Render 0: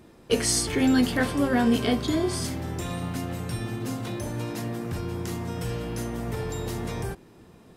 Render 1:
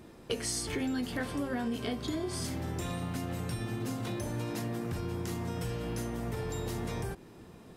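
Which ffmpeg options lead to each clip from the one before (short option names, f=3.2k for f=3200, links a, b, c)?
-af "acompressor=threshold=-32dB:ratio=5"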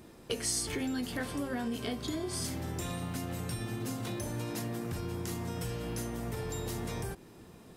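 -af "highshelf=f=5.1k:g=6,volume=-1.5dB"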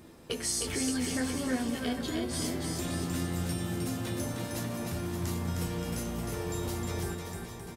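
-filter_complex "[0:a]asplit=2[a][b];[b]adelay=12,volume=-8dB[c];[a][c]amix=inputs=2:normalize=0,aecho=1:1:310|573.5|797.5|987.9|1150:0.631|0.398|0.251|0.158|0.1"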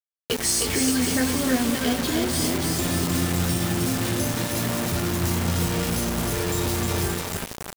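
-af "acrusher=bits=5:mix=0:aa=0.000001,volume=8.5dB"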